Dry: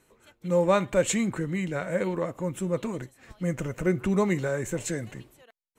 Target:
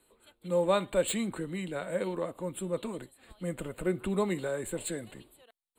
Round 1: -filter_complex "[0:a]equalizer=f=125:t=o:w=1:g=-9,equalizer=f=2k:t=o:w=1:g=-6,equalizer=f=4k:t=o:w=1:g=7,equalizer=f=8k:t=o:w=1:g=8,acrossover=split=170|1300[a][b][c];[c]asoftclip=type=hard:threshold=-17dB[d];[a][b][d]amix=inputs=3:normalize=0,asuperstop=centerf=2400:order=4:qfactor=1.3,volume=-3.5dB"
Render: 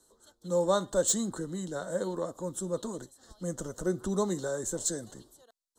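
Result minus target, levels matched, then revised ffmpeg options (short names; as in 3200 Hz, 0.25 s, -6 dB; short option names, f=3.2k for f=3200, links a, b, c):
8000 Hz band +7.5 dB
-filter_complex "[0:a]equalizer=f=125:t=o:w=1:g=-9,equalizer=f=2k:t=o:w=1:g=-6,equalizer=f=4k:t=o:w=1:g=7,equalizer=f=8k:t=o:w=1:g=8,acrossover=split=170|1300[a][b][c];[c]asoftclip=type=hard:threshold=-17dB[d];[a][b][d]amix=inputs=3:normalize=0,asuperstop=centerf=5900:order=4:qfactor=1.3,volume=-3.5dB"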